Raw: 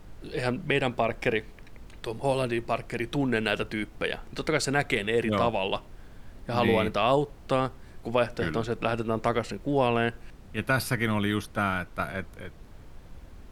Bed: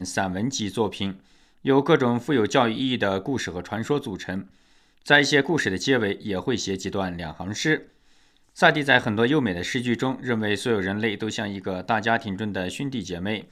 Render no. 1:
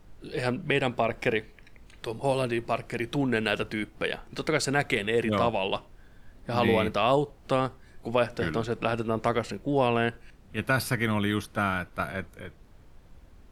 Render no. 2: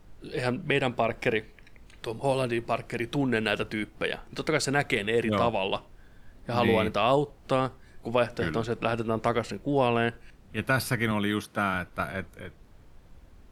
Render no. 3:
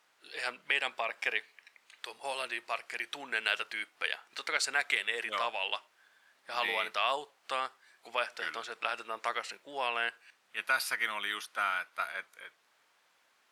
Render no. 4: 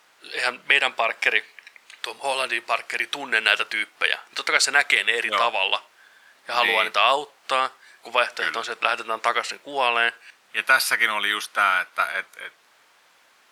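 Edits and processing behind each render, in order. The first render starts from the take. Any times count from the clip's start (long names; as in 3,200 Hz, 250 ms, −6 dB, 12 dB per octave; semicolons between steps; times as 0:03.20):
noise reduction from a noise print 6 dB
0:11.11–0:11.74: high-pass filter 120 Hz
high-pass filter 1,200 Hz 12 dB per octave; high-shelf EQ 12,000 Hz −7.5 dB
level +12 dB; brickwall limiter −2 dBFS, peak gain reduction 2 dB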